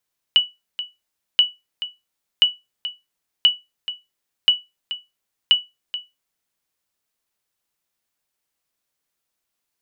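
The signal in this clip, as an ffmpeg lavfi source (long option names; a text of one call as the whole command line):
ffmpeg -f lavfi -i "aevalsrc='0.531*(sin(2*PI*2950*mod(t,1.03))*exp(-6.91*mod(t,1.03)/0.21)+0.211*sin(2*PI*2950*max(mod(t,1.03)-0.43,0))*exp(-6.91*max(mod(t,1.03)-0.43,0)/0.21))':duration=6.18:sample_rate=44100" out.wav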